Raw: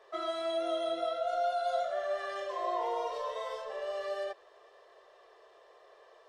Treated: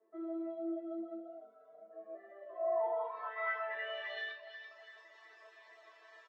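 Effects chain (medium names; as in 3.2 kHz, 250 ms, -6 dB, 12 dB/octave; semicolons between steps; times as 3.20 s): steep high-pass 200 Hz 96 dB/octave; doubling 42 ms -8 dB; low-pass sweep 280 Hz -> 7.1 kHz, 1.90–4.88 s; graphic EQ 500/2000/8000 Hz -9/+9/-4 dB; on a send: echo whose repeats swap between lows and highs 167 ms, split 1.3 kHz, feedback 62%, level -4 dB; on the sum: reverb removal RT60 1.3 s; treble shelf 8.4 kHz -6 dB; in parallel at -2 dB: compression, threshold -54 dBFS, peak gain reduction 24 dB; 1.37–2.15 s: on the sum: ring modulator 62 Hz; chord resonator A3 fifth, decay 0.26 s; trim +10.5 dB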